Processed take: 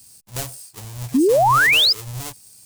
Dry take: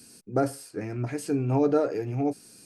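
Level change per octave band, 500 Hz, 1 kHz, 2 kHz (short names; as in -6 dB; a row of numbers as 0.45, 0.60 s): +5.0, +15.0, +26.0 dB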